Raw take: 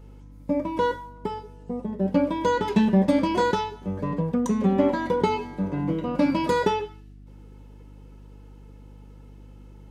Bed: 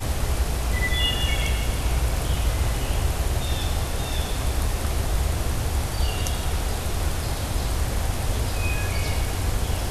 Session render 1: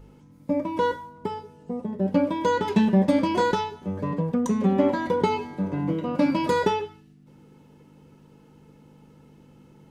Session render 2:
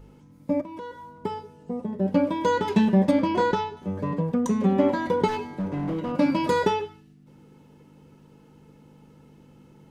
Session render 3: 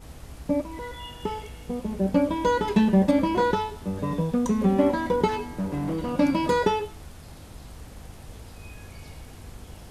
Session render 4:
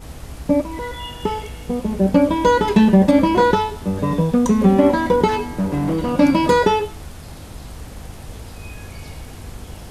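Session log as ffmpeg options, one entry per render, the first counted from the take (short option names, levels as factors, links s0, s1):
-af "bandreject=f=50:t=h:w=4,bandreject=f=100:t=h:w=4"
-filter_complex "[0:a]asettb=1/sr,asplit=3[s0][s1][s2];[s0]atrim=end=0.614[s3];[s1]atrim=start=0.61:end=1.19,asetpts=PTS-STARTPTS,afade=t=in:d=0.004:c=qsin,afade=t=out:st=0.576:d=0.004:c=qsin,acompressor=threshold=0.0112:ratio=3:attack=3.2:release=140:knee=1:detection=peak[s4];[s2]atrim=start=1.186[s5];[s3][s4]acrossfade=d=0.004:c1=hsin:c2=qsin[s6];[s6][s5]acrossfade=d=0.004:c1=qsin:c2=hsin,asettb=1/sr,asplit=3[s7][s8][s9];[s7]atrim=end=3.114[s10];[s8]atrim=start=3.11:end=3.77,asetpts=PTS-STARTPTS,afade=t=in:d=0.004:c=qsin,afade=t=out:st=0.656:d=0.004:c=qsin,lowpass=f=3300:p=1[s11];[s9]atrim=start=3.766[s12];[s10][s11]acrossfade=d=0.004:c1=hsin:c2=qsin[s13];[s13][s12]acrossfade=d=0.004:c1=qsin:c2=hsin,asplit=3[s14][s15][s16];[s14]afade=t=out:st=5.27:d=0.02[s17];[s15]asoftclip=type=hard:threshold=0.0596,afade=t=in:st=5.27:d=0.02,afade=t=out:st=6.11:d=0.02[s18];[s16]afade=t=in:st=6.11:d=0.02[s19];[s17][s18][s19]amix=inputs=3:normalize=0"
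-filter_complex "[1:a]volume=0.119[s0];[0:a][s0]amix=inputs=2:normalize=0"
-af "volume=2.51,alimiter=limit=0.708:level=0:latency=1"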